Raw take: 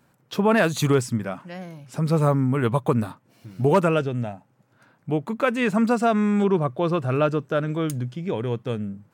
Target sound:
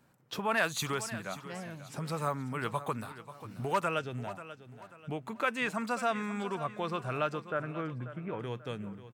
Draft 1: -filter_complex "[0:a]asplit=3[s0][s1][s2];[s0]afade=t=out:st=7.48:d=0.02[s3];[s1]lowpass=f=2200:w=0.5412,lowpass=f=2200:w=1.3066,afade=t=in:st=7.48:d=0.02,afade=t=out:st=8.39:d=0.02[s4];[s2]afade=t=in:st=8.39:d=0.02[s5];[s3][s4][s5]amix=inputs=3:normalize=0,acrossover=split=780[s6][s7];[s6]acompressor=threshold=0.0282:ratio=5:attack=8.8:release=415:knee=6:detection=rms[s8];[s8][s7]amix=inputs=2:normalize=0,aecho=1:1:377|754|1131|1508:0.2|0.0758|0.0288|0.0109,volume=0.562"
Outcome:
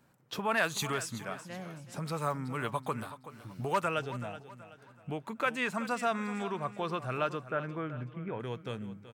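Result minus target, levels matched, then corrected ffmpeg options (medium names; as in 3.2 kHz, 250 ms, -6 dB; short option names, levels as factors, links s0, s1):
echo 161 ms early
-filter_complex "[0:a]asplit=3[s0][s1][s2];[s0]afade=t=out:st=7.48:d=0.02[s3];[s1]lowpass=f=2200:w=0.5412,lowpass=f=2200:w=1.3066,afade=t=in:st=7.48:d=0.02,afade=t=out:st=8.39:d=0.02[s4];[s2]afade=t=in:st=8.39:d=0.02[s5];[s3][s4][s5]amix=inputs=3:normalize=0,acrossover=split=780[s6][s7];[s6]acompressor=threshold=0.0282:ratio=5:attack=8.8:release=415:knee=6:detection=rms[s8];[s8][s7]amix=inputs=2:normalize=0,aecho=1:1:538|1076|1614|2152:0.2|0.0758|0.0288|0.0109,volume=0.562"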